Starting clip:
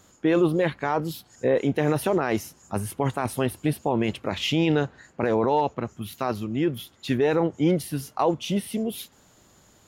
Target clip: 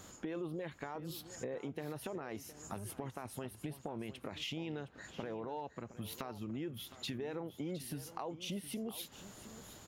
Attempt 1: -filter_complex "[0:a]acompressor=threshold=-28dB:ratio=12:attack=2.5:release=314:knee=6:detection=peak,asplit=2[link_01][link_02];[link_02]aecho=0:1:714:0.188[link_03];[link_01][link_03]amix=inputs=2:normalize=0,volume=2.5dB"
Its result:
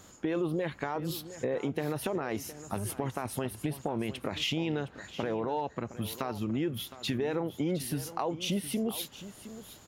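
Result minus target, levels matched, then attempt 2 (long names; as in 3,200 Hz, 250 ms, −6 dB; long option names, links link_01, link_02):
downward compressor: peak gain reduction −10 dB
-filter_complex "[0:a]acompressor=threshold=-39dB:ratio=12:attack=2.5:release=314:knee=6:detection=peak,asplit=2[link_01][link_02];[link_02]aecho=0:1:714:0.188[link_03];[link_01][link_03]amix=inputs=2:normalize=0,volume=2.5dB"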